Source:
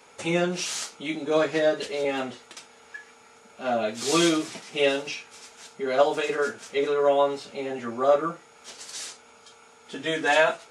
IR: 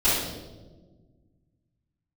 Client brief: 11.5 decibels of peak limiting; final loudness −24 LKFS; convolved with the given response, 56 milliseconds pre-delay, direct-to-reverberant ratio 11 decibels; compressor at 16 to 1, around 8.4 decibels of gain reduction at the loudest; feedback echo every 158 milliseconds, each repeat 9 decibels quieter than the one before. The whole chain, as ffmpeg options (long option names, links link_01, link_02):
-filter_complex "[0:a]acompressor=threshold=-22dB:ratio=16,alimiter=level_in=1dB:limit=-24dB:level=0:latency=1,volume=-1dB,aecho=1:1:158|316|474|632:0.355|0.124|0.0435|0.0152,asplit=2[link_01][link_02];[1:a]atrim=start_sample=2205,adelay=56[link_03];[link_02][link_03]afir=irnorm=-1:irlink=0,volume=-26.5dB[link_04];[link_01][link_04]amix=inputs=2:normalize=0,volume=9.5dB"